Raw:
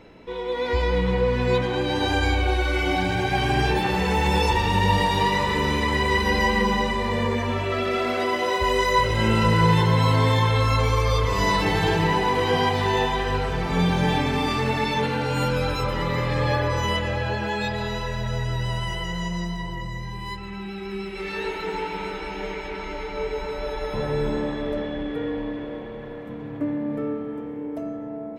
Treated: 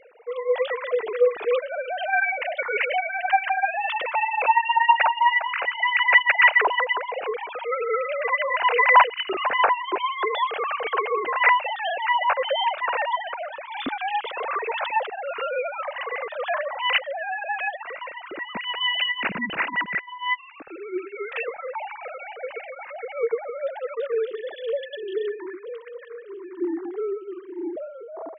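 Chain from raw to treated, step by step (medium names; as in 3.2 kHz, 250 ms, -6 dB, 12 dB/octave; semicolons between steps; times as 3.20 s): formants replaced by sine waves; reverb removal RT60 1.5 s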